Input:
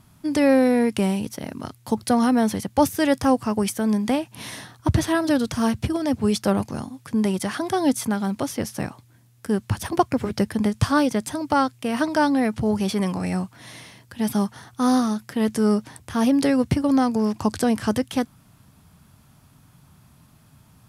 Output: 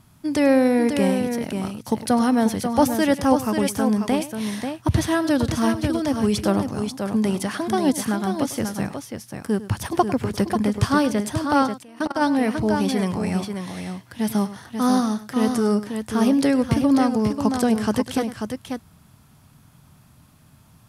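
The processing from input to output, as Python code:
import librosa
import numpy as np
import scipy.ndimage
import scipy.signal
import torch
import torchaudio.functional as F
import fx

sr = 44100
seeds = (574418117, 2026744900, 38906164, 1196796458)

y = fx.echo_multitap(x, sr, ms=(101, 539), db=(-15.5, -6.5))
y = fx.level_steps(y, sr, step_db=22, at=(11.78, 12.2), fade=0.02)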